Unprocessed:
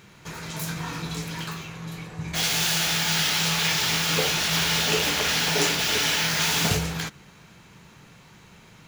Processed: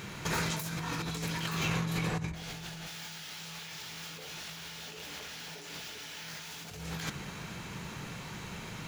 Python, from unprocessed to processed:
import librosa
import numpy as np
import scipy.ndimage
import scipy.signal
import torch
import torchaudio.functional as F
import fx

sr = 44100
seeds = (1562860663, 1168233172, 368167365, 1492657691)

y = fx.tilt_eq(x, sr, slope=-2.5, at=(2.3, 2.86), fade=0.02)
y = fx.over_compress(y, sr, threshold_db=-38.0, ratio=-1.0)
y = y * librosa.db_to_amplitude(-2.0)